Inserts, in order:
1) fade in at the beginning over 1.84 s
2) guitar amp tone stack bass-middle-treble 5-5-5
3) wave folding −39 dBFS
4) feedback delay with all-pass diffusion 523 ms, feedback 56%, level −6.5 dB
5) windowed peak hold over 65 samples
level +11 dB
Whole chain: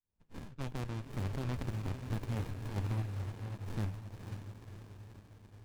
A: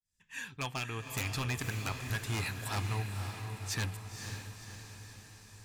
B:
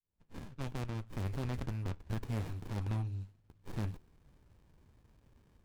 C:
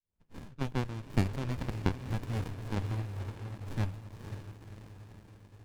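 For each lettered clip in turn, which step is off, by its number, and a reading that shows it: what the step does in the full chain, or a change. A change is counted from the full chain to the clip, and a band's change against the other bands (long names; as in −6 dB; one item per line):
5, 8 kHz band +12.5 dB
4, change in momentary loudness spread −1 LU
3, distortion level −5 dB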